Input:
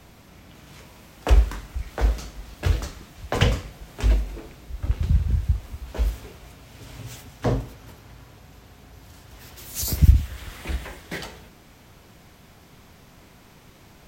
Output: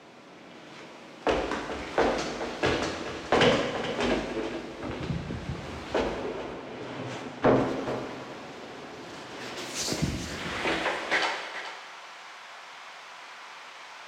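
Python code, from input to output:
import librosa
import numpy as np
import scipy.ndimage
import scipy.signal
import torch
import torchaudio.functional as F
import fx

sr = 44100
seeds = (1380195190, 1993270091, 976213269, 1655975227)

y = fx.high_shelf(x, sr, hz=2700.0, db=-11.0, at=(6.01, 7.56))
y = fx.rider(y, sr, range_db=4, speed_s=0.5)
y = fx.filter_sweep_highpass(y, sr, from_hz=310.0, to_hz=1000.0, start_s=10.45, end_s=11.41, q=1.1)
y = 10.0 ** (-22.0 / 20.0) * np.tanh(y / 10.0 ** (-22.0 / 20.0))
y = fx.air_absorb(y, sr, metres=110.0)
y = y + 10.0 ** (-12.5 / 20.0) * np.pad(y, (int(428 * sr / 1000.0), 0))[:len(y)]
y = fx.rev_plate(y, sr, seeds[0], rt60_s=1.3, hf_ratio=0.95, predelay_ms=0, drr_db=4.5)
y = y * 10.0 ** (6.5 / 20.0)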